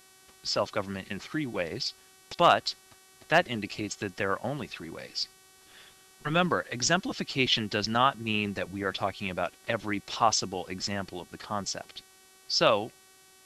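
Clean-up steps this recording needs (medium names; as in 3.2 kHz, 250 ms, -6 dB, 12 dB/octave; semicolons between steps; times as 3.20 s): clip repair -9 dBFS; de-hum 378.3 Hz, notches 32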